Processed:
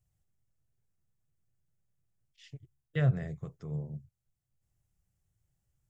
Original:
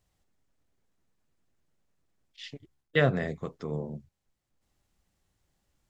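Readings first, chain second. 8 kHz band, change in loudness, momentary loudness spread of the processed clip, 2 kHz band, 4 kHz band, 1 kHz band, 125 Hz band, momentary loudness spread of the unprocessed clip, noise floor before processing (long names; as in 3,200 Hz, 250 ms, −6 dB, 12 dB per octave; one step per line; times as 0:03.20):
can't be measured, −3.5 dB, 23 LU, −12.5 dB, −13.5 dB, −12.0 dB, +1.5 dB, 20 LU, −82 dBFS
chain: octave-band graphic EQ 125/250/500/1,000/2,000/4,000 Hz +10/−11/−5/−8/−5/−11 dB
level −3.5 dB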